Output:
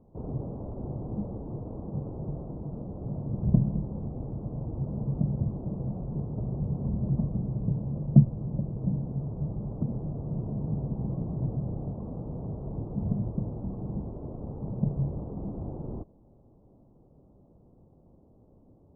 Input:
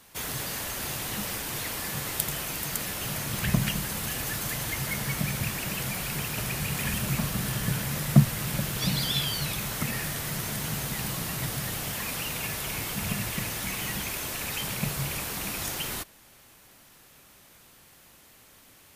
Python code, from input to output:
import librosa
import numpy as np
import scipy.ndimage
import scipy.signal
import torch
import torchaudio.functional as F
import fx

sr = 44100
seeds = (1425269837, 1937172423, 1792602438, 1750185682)

y = fx.rider(x, sr, range_db=10, speed_s=2.0)
y = scipy.ndimage.gaussian_filter1d(y, 15.0, mode='constant')
y = F.gain(torch.from_numpy(y), 3.5).numpy()